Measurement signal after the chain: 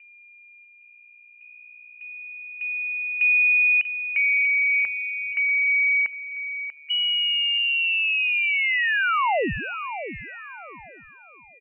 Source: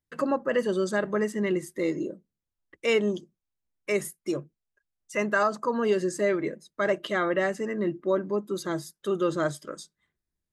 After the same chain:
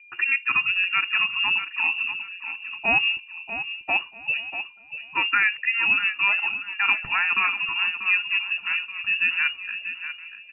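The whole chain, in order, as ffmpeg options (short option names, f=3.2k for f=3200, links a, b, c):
-filter_complex "[0:a]aemphasis=mode=production:type=50fm,asplit=2[a][b];[b]adelay=1516,volume=-15dB,highshelf=f=4k:g=-34.1[c];[a][c]amix=inputs=2:normalize=0,aeval=exprs='val(0)+0.00316*sin(2*PI*590*n/s)':c=same,asplit=2[d][e];[e]aecho=0:1:640|1280|1920:0.299|0.0716|0.0172[f];[d][f]amix=inputs=2:normalize=0,lowpass=f=2.6k:t=q:w=0.5098,lowpass=f=2.6k:t=q:w=0.6013,lowpass=f=2.6k:t=q:w=0.9,lowpass=f=2.6k:t=q:w=2.563,afreqshift=-3000,volume=3dB"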